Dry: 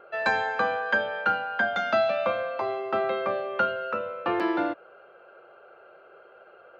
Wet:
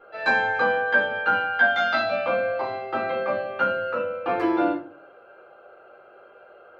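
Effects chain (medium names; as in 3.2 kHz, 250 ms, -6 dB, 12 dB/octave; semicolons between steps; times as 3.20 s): 1.32–1.98 s: tilt shelf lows -5 dB, about 900 Hz; simulated room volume 230 m³, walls furnished, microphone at 3.8 m; trim -6 dB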